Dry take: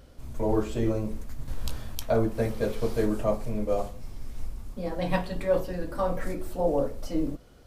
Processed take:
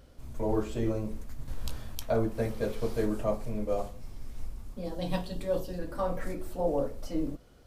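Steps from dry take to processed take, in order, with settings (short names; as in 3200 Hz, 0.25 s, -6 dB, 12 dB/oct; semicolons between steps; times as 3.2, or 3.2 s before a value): 4.84–5.79 EQ curve 320 Hz 0 dB, 2200 Hz -8 dB, 3200 Hz +3 dB; gain -3.5 dB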